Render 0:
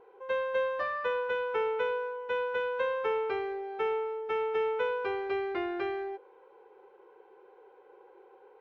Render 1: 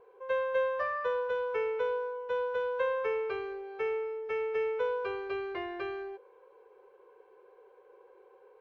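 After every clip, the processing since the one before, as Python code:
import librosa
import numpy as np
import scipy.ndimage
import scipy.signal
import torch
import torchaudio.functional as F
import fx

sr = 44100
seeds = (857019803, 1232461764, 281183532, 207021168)

y = x + 0.63 * np.pad(x, (int(1.8 * sr / 1000.0), 0))[:len(x)]
y = y * 10.0 ** (-3.5 / 20.0)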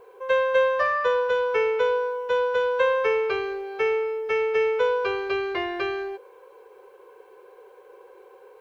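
y = fx.high_shelf(x, sr, hz=3600.0, db=11.5)
y = y * 10.0 ** (8.5 / 20.0)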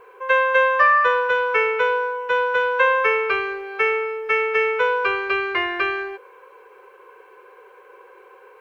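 y = fx.band_shelf(x, sr, hz=1700.0, db=9.5, octaves=1.7)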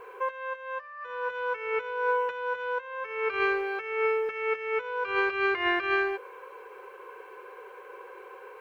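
y = fx.over_compress(x, sr, threshold_db=-25.0, ratio=-0.5)
y = y * 10.0 ** (-4.0 / 20.0)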